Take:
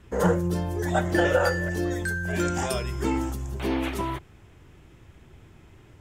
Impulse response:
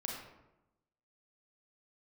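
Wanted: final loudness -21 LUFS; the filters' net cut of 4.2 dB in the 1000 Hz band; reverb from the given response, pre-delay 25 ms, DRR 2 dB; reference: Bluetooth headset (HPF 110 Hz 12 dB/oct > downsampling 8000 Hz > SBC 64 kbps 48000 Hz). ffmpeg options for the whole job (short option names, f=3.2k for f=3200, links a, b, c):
-filter_complex "[0:a]equalizer=f=1k:t=o:g=-6,asplit=2[a][b];[1:a]atrim=start_sample=2205,adelay=25[c];[b][c]afir=irnorm=-1:irlink=0,volume=-3dB[d];[a][d]amix=inputs=2:normalize=0,highpass=110,aresample=8000,aresample=44100,volume=5.5dB" -ar 48000 -c:a sbc -b:a 64k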